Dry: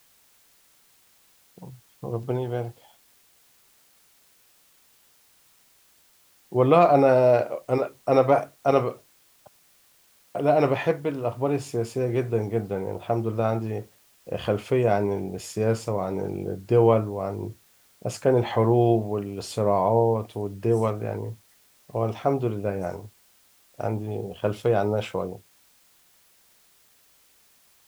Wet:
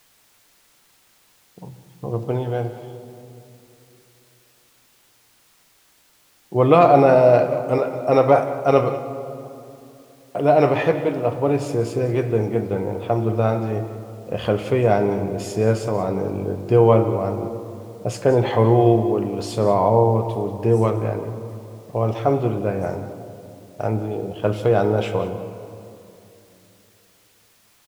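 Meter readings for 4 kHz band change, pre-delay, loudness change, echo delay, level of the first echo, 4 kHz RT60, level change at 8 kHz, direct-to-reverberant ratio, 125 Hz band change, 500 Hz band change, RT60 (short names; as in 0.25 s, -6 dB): +3.5 dB, 6 ms, +4.5 dB, 0.184 s, -15.0 dB, 1.4 s, n/a, 7.5 dB, +5.5 dB, +4.5 dB, 2.9 s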